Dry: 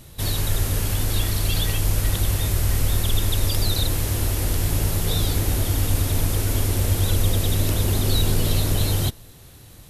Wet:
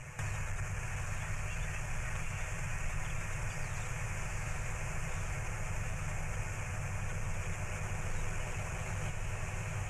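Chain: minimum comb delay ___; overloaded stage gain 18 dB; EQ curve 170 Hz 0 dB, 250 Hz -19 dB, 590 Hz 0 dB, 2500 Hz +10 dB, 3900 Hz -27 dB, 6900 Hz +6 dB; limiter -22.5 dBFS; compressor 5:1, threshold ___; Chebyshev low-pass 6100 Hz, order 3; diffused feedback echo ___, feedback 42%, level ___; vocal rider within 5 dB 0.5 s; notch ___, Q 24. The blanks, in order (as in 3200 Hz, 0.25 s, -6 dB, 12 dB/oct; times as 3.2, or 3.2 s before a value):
8.1 ms, -33 dBFS, 0.812 s, -3 dB, 2000 Hz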